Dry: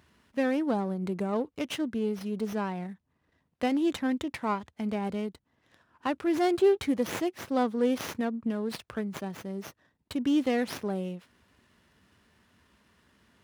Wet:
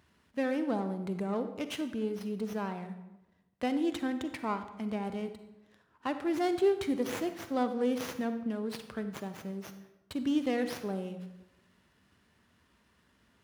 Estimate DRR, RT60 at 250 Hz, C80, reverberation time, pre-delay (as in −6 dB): 9.0 dB, 1.0 s, 12.0 dB, 0.95 s, 38 ms